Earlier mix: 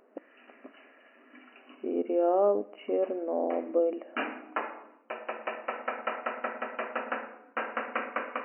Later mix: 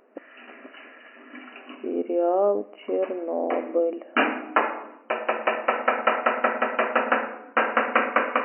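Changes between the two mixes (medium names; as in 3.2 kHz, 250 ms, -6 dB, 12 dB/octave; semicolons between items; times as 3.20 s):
speech +3.0 dB; background +11.5 dB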